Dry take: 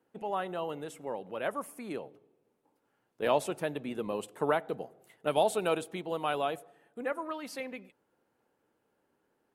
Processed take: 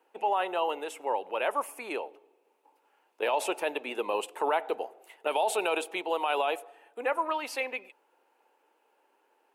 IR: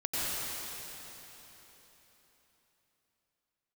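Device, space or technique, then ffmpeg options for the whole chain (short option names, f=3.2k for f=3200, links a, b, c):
laptop speaker: -af "highpass=f=350:w=0.5412,highpass=f=350:w=1.3066,equalizer=f=890:t=o:w=0.44:g=9,equalizer=f=2.6k:t=o:w=0.45:g=9,alimiter=limit=-22.5dB:level=0:latency=1:release=24,volume=4.5dB"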